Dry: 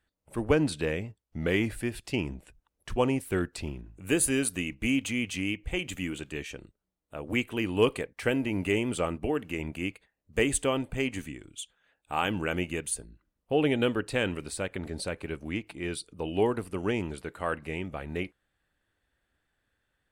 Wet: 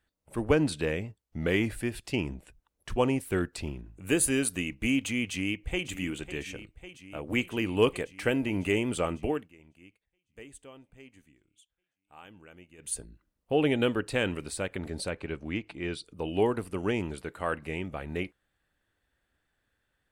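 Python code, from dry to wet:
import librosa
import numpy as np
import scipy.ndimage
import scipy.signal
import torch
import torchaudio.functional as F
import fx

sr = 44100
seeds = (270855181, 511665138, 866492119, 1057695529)

y = fx.echo_throw(x, sr, start_s=5.28, length_s=0.59, ms=550, feedback_pct=80, wet_db=-13.5)
y = fx.lowpass(y, sr, hz=5700.0, slope=12, at=(15.1, 16.05))
y = fx.edit(y, sr, fx.fade_down_up(start_s=9.31, length_s=3.65, db=-22.0, fade_s=0.18), tone=tone)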